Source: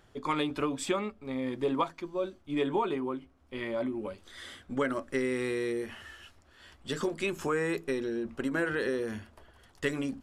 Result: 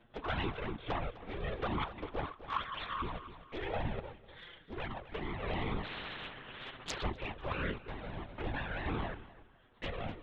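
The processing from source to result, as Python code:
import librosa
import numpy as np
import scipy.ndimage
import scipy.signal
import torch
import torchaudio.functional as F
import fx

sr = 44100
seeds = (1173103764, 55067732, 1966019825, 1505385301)

p1 = fx.cycle_switch(x, sr, every=2, mode='muted')
p2 = fx.high_shelf(p1, sr, hz=2900.0, db=-8.5, at=(0.66, 1.2))
p3 = fx.highpass_res(p2, sr, hz=1100.0, q=12.0, at=(2.25, 3.02))
p4 = 10.0 ** (-26.5 / 20.0) * (np.abs((p3 / 10.0 ** (-26.5 / 20.0) + 3.0) % 4.0 - 2.0) - 1.0)
p5 = fx.lpc_vocoder(p4, sr, seeds[0], excitation='whisper', order=16)
p6 = fx.env_flanger(p5, sr, rest_ms=9.0, full_db=-27.5)
p7 = p6 + fx.echo_feedback(p6, sr, ms=253, feedback_pct=33, wet_db=-14.0, dry=0)
p8 = fx.tremolo_random(p7, sr, seeds[1], hz=3.5, depth_pct=55)
p9 = fx.spectral_comp(p8, sr, ratio=4.0, at=(5.83, 7.02), fade=0.02)
y = p9 * librosa.db_to_amplitude(4.0)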